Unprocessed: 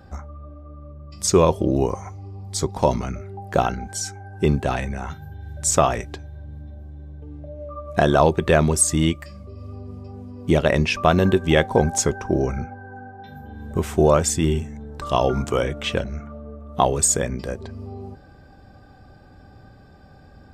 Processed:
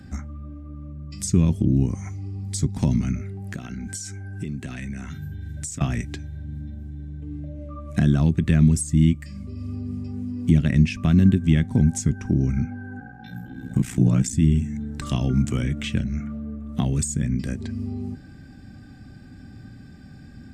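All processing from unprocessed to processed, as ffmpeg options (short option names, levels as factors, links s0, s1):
-filter_complex "[0:a]asettb=1/sr,asplit=3[s0][s1][s2];[s0]atrim=end=3.284[s3];[s1]atrim=start=3.28:end=5.81,asetpts=PTS-STARTPTS,afade=t=in:d=0.004:c=qsin,afade=t=out:st=2.526:d=0.004:c=qsin,bandreject=f=830:w=5.8,acompressor=threshold=0.0251:ratio=8:attack=3.2:release=140:knee=1:detection=peak[s4];[s2]atrim=start=5.806[s5];[s3][s4]acrossfade=d=0.004:c1=hsin:c2=qsin[s6];[s6][s5]acrossfade=d=0.004:c1=qsin:c2=hsin,asettb=1/sr,asplit=3[s7][s8][s9];[s7]atrim=end=12.994[s10];[s8]atrim=start=12.99:end=14.33,asetpts=PTS-STARTPTS,afade=t=in:d=0.004:c=qsin,afade=t=out:st=1.336:d=0.004:c=qsin,aecho=1:1:6.4:0.71,atrim=end_sample=59094,aeval=exprs='val(0)*sin(2*PI*30*n/s)':c=same[s11];[s9]atrim=start=14.326[s12];[s10][s11]acrossfade=d=0.004:c1=hsin:c2=qsin[s13];[s13][s12]acrossfade=d=0.004:c1=qsin:c2=hsin,equalizer=f=125:t=o:w=1:g=5,equalizer=f=250:t=o:w=1:g=11,equalizer=f=500:t=o:w=1:g=-10,equalizer=f=1000:t=o:w=1:g=-9,equalizer=f=2000:t=o:w=1:g=7,equalizer=f=8000:t=o:w=1:g=8,acrossover=split=220[s14][s15];[s15]acompressor=threshold=0.0282:ratio=4[s16];[s14][s16]amix=inputs=2:normalize=0"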